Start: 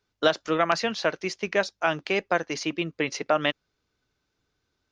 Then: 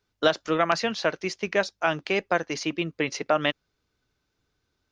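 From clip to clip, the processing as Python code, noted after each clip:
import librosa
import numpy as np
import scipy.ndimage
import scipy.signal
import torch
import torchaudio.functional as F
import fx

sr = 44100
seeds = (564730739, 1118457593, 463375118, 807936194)

y = fx.low_shelf(x, sr, hz=140.0, db=3.0)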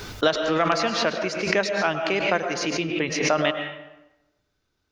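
y = fx.rev_freeverb(x, sr, rt60_s=0.98, hf_ratio=0.65, predelay_ms=80, drr_db=6.0)
y = fx.pre_swell(y, sr, db_per_s=51.0)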